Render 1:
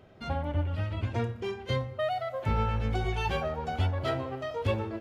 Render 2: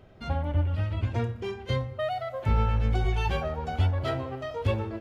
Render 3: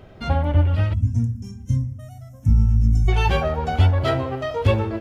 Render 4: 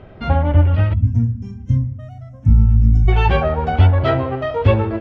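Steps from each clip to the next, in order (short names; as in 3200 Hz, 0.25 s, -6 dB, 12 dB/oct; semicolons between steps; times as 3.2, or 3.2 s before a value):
low shelf 63 Hz +12 dB
spectral gain 0.94–3.08, 290–5200 Hz -27 dB; gain +8.5 dB
LPF 2800 Hz 12 dB/oct; gain +4.5 dB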